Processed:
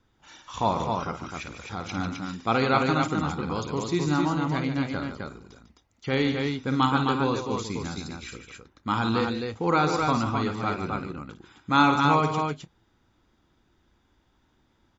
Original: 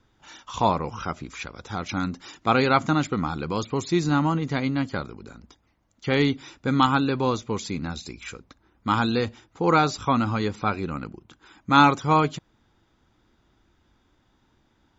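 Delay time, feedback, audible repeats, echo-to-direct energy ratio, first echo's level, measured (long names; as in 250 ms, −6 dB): 53 ms, repeats not evenly spaced, 3, −2.0 dB, −8.5 dB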